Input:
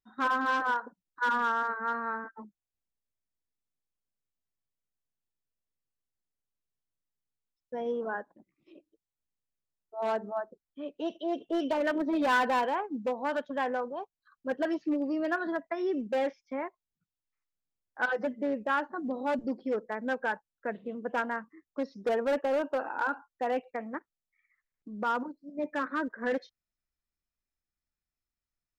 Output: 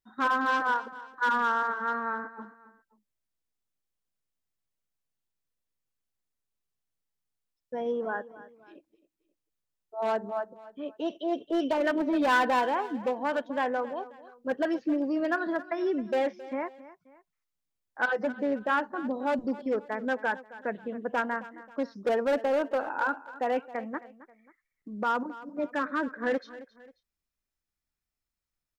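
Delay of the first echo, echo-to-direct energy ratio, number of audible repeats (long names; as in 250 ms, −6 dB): 268 ms, −16.5 dB, 2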